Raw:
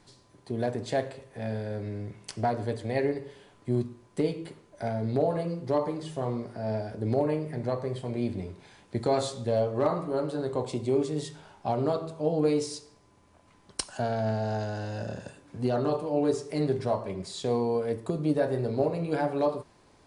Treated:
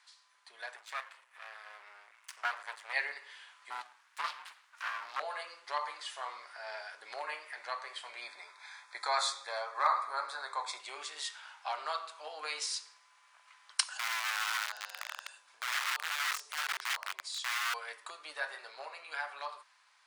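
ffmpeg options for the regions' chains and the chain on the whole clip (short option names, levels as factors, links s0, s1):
-filter_complex "[0:a]asettb=1/sr,asplit=3[s0][s1][s2];[s0]atrim=end=0.764[s3];[s1]atrim=start=0.76:end=2.93,asetpts=PTS-STARTPTS,afade=t=in:d=0.004:c=qsin,afade=t=out:st=2.166:d=0.004:c=qsin,equalizer=f=4200:w=1.1:g=-6.5,aeval=exprs='max(val(0),0)':c=same[s4];[s2]atrim=start=2.926[s5];[s3][s4]acrossfade=d=0.004:c1=hsin:c2=qsin[s6];[s6][s5]acrossfade=d=0.004:c1=qsin:c2=hsin,asettb=1/sr,asplit=3[s7][s8][s9];[s7]atrim=end=3.704[s10];[s8]atrim=start=3.7:end=5.2,asetpts=PTS-STARTPTS,afade=t=in:d=0.004:c=qsin,afade=t=out:st=1.496:d=0.004:c=qsin,highpass=150,aeval=exprs='abs(val(0))':c=same,aeval=exprs='val(0)*sin(2*PI*260*n/s)':c=same[s11];[s9]atrim=start=5.196[s12];[s10][s11]acrossfade=d=0.004:c1=hsin:c2=qsin[s13];[s13][s12]acrossfade=d=0.004:c1=qsin:c2=hsin,asettb=1/sr,asplit=3[s14][s15][s16];[s14]atrim=end=8.214[s17];[s15]atrim=start=8.21:end=10.8,asetpts=PTS-STARTPTS,afade=t=in:d=0.004:c=qsin,afade=t=out:st=2.586:d=0.004:c=qsin,asuperstop=centerf=2900:order=4:qfactor=3.7,equalizer=f=940:w=1.3:g=4.5[s18];[s16]atrim=start=10.796[s19];[s17][s18]acrossfade=d=0.004:c1=hsin:c2=qsin[s20];[s20][s19]acrossfade=d=0.004:c1=qsin:c2=hsin,asettb=1/sr,asplit=3[s21][s22][s23];[s21]atrim=end=13.934[s24];[s22]atrim=start=13.93:end=17.74,asetpts=PTS-STARTPTS,afade=t=in:d=0.004:c=qsin,afade=t=out:st=3.806:d=0.004:c=qsin,equalizer=f=1800:w=1:g=-7.5,acompressor=threshold=0.00794:ratio=1.5:attack=3.2:release=140:knee=1:detection=peak,aeval=exprs='(mod(39.8*val(0)+1,2)-1)/39.8':c=same[s25];[s23]atrim=start=17.736[s26];[s24][s25]acrossfade=d=0.004:c1=hsin:c2=qsin[s27];[s27][s26]acrossfade=d=0.004:c1=qsin:c2=hsin,highpass=f=1200:w=0.5412,highpass=f=1200:w=1.3066,highshelf=f=5500:g=-9.5,dynaudnorm=f=360:g=11:m=1.88,volume=1.33"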